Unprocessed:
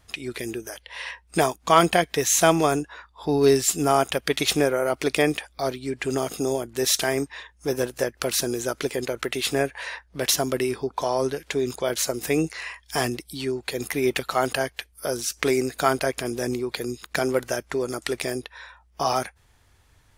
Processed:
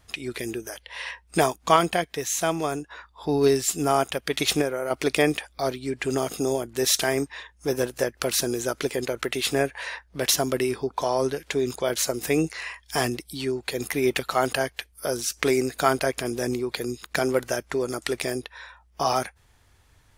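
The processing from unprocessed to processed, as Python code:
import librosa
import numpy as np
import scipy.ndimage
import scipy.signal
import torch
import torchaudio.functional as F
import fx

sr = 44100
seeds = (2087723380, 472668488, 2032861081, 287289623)

y = fx.tremolo_random(x, sr, seeds[0], hz=3.5, depth_pct=55, at=(1.76, 4.91))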